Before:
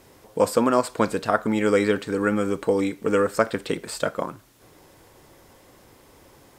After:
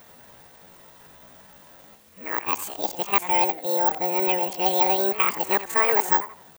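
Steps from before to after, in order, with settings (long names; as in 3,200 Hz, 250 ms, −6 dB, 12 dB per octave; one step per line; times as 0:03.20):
played backwards from end to start
pitch shifter +10 semitones
in parallel at −2.5 dB: downward compressor, threshold −32 dBFS, peak gain reduction 16.5 dB
on the sum: bad sample-rate conversion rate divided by 2×, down none, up zero stuff
feedback echo with a swinging delay time 87 ms, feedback 33%, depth 200 cents, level −14.5 dB
level −4.5 dB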